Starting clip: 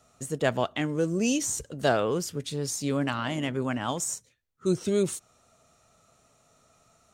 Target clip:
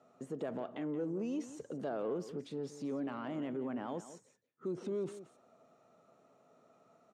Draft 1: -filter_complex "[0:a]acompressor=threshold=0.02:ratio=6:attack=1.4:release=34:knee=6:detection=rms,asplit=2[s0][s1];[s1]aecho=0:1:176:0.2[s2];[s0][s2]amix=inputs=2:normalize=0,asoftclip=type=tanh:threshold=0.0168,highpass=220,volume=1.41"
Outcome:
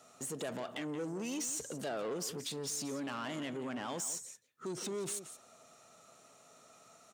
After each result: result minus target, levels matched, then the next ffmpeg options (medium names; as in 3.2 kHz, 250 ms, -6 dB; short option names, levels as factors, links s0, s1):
saturation: distortion +12 dB; 250 Hz band -3.5 dB
-filter_complex "[0:a]acompressor=threshold=0.02:ratio=6:attack=1.4:release=34:knee=6:detection=rms,asplit=2[s0][s1];[s1]aecho=0:1:176:0.2[s2];[s0][s2]amix=inputs=2:normalize=0,asoftclip=type=tanh:threshold=0.0398,highpass=220,volume=1.41"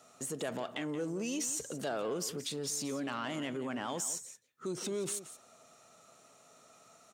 250 Hz band -3.0 dB
-filter_complex "[0:a]acompressor=threshold=0.02:ratio=6:attack=1.4:release=34:knee=6:detection=rms,bandpass=f=300:t=q:w=0.55:csg=0,asplit=2[s0][s1];[s1]aecho=0:1:176:0.2[s2];[s0][s2]amix=inputs=2:normalize=0,asoftclip=type=tanh:threshold=0.0398,highpass=220,volume=1.41"